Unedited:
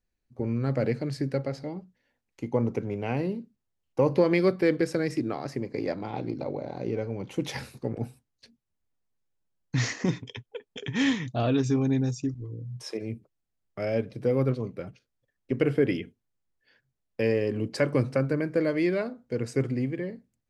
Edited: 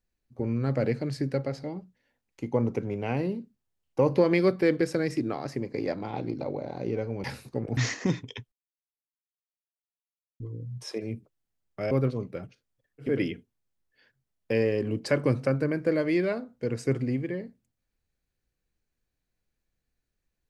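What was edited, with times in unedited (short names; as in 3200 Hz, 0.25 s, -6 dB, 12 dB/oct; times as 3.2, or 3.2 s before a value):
7.24–7.53 cut
8.06–9.76 cut
10.51–12.39 mute
13.9–14.35 cut
15.54–15.79 cut, crossfade 0.24 s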